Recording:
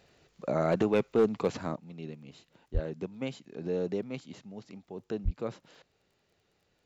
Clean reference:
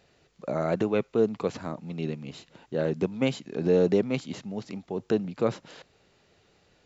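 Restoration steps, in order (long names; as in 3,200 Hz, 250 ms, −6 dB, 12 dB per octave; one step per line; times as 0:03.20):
clipped peaks rebuilt −17.5 dBFS
click removal
high-pass at the plosives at 0:02.73/0:05.24
level correction +10 dB, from 0:01.76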